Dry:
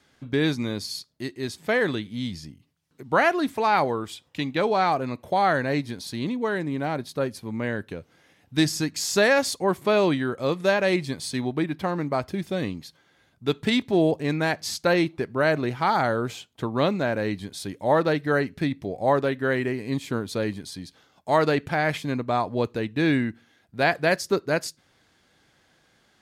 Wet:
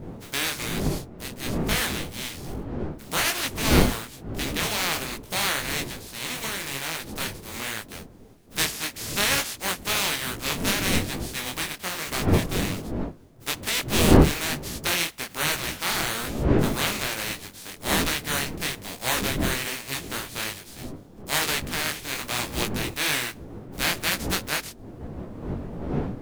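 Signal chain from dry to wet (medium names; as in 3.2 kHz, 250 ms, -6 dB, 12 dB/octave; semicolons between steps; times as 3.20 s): spectral contrast reduction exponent 0.22; wind noise 300 Hz -24 dBFS; dynamic bell 2.3 kHz, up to +4 dB, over -35 dBFS, Q 0.9; detune thickener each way 40 cents; trim -2 dB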